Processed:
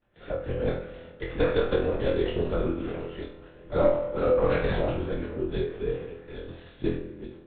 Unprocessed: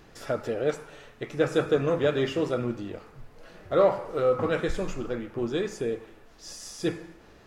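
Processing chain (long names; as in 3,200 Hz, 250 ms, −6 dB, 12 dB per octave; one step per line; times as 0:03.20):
delay that plays each chunk backwards 543 ms, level −12.5 dB
downward expander −42 dBFS
rotating-speaker cabinet horn 0.6 Hz
linear-prediction vocoder at 8 kHz whisper
flutter between parallel walls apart 4.1 metres, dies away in 0.38 s
on a send at −12.5 dB: convolution reverb RT60 2.3 s, pre-delay 3 ms
on the sum: every ending faded ahead of time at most 120 dB per second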